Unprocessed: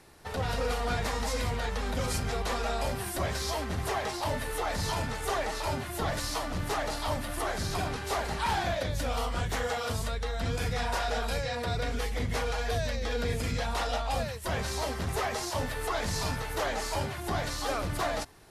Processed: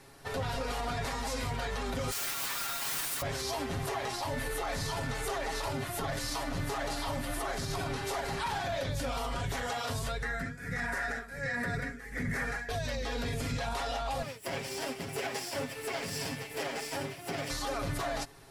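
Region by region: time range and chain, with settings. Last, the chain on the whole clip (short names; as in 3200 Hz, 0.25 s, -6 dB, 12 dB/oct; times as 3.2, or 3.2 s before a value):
2.11–3.22 HPF 1100 Hz 24 dB/oct + requantised 6-bit, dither triangular
10.22–12.69 EQ curve 120 Hz 0 dB, 180 Hz +9 dB, 1000 Hz -5 dB, 1800 Hz +15 dB, 3000 Hz -10 dB, 7800 Hz +2 dB + tremolo 1.4 Hz, depth 89%
14.22–17.5 minimum comb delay 0.38 ms + HPF 160 Hz + upward expander, over -42 dBFS
whole clip: comb 7.3 ms; limiter -25.5 dBFS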